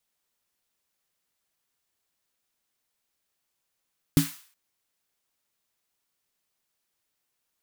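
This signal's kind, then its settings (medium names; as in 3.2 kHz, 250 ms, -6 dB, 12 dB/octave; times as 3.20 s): snare drum length 0.37 s, tones 160 Hz, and 280 Hz, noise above 990 Hz, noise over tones -12 dB, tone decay 0.18 s, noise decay 0.50 s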